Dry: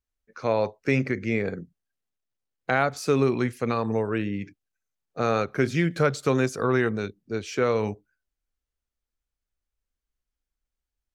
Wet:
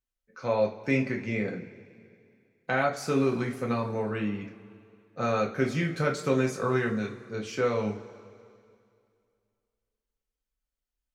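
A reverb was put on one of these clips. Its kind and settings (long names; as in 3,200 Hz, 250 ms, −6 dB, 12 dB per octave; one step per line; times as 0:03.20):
coupled-rooms reverb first 0.25 s, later 2.4 s, from −20 dB, DRR −0.5 dB
level −6.5 dB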